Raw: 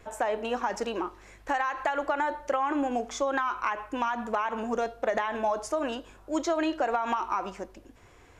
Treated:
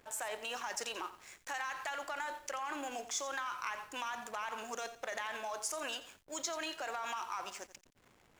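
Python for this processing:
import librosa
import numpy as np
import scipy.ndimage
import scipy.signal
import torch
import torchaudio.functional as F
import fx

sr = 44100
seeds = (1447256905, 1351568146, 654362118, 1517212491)

p1 = np.diff(x, prepend=0.0)
p2 = fx.over_compress(p1, sr, threshold_db=-49.0, ratio=-0.5)
p3 = p1 + (p2 * 10.0 ** (-3.0 / 20.0))
p4 = fx.backlash(p3, sr, play_db=-51.0)
p5 = fx.echo_crushed(p4, sr, ms=87, feedback_pct=35, bits=10, wet_db=-13)
y = p5 * 10.0 ** (3.5 / 20.0)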